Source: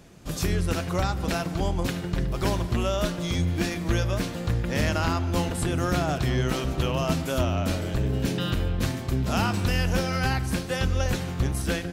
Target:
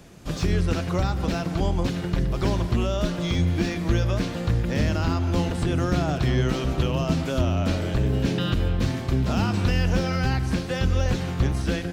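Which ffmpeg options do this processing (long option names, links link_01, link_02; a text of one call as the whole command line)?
ffmpeg -i in.wav -filter_complex "[0:a]acrossover=split=6300[link_01][link_02];[link_02]acompressor=threshold=-57dB:ratio=4:attack=1:release=60[link_03];[link_01][link_03]amix=inputs=2:normalize=0,acrossover=split=450|4000[link_04][link_05][link_06];[link_05]alimiter=level_in=2.5dB:limit=-24dB:level=0:latency=1:release=114,volume=-2.5dB[link_07];[link_06]asoftclip=type=tanh:threshold=-38dB[link_08];[link_04][link_07][link_08]amix=inputs=3:normalize=0,volume=3dB" out.wav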